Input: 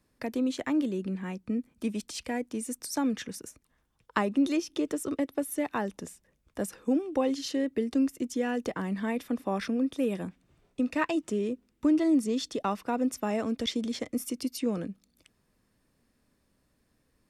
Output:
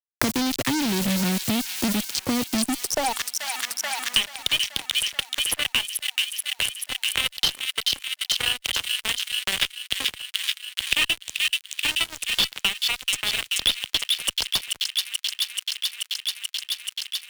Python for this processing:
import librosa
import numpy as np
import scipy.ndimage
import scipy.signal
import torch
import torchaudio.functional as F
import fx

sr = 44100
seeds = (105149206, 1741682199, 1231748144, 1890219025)

p1 = fx.wiener(x, sr, points=25)
p2 = fx.low_shelf(p1, sr, hz=260.0, db=2.5)
p3 = 10.0 ** (-27.0 / 20.0) * np.tanh(p2 / 10.0 ** (-27.0 / 20.0))
p4 = fx.filter_sweep_highpass(p3, sr, from_hz=110.0, to_hz=3000.0, start_s=2.43, end_s=3.52, q=7.4)
p5 = fx.quant_dither(p4, sr, seeds[0], bits=8, dither='triangular')
p6 = p4 + (p5 * 10.0 ** (-4.5 / 20.0))
p7 = fx.fuzz(p6, sr, gain_db=31.0, gate_db=-38.0)
p8 = p7 + fx.echo_wet_highpass(p7, sr, ms=433, feedback_pct=60, hz=2400.0, wet_db=-4, dry=0)
y = fx.band_squash(p8, sr, depth_pct=100)